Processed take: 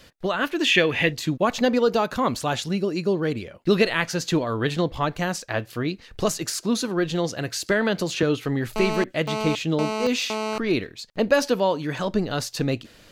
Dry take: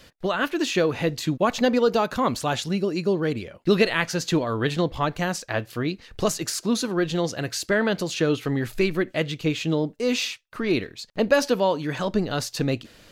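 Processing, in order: 0.64–1.12 spectral gain 1600–3600 Hz +11 dB; 7.66–8.23 three-band squash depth 70%; 8.76–10.58 GSM buzz -27 dBFS

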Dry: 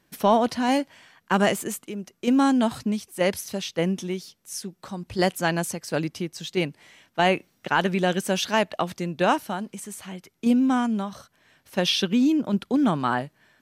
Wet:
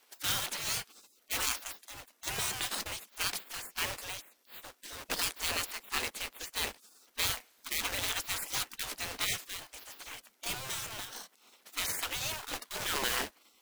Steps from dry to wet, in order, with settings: resonant low shelf 160 Hz +13.5 dB, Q 3; short-mantissa float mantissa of 2-bit; spectral gate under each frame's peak -25 dB weak; gain +5 dB

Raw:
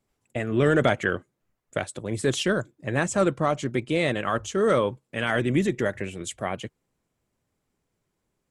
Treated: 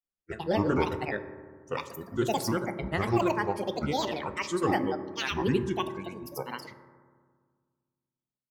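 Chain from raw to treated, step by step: spectral noise reduction 20 dB; grains, spray 0.1 s, pitch spread up and down by 12 st; reverb RT60 1.8 s, pre-delay 3 ms, DRR 9 dB; gain -4.5 dB

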